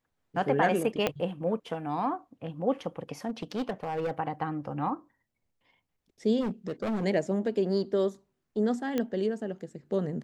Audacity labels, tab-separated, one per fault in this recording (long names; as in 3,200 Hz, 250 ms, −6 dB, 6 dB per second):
1.070000	1.070000	click −12 dBFS
3.260000	4.110000	clipping −26.5 dBFS
6.400000	7.050000	clipping −27.5 dBFS
8.980000	8.980000	click −16 dBFS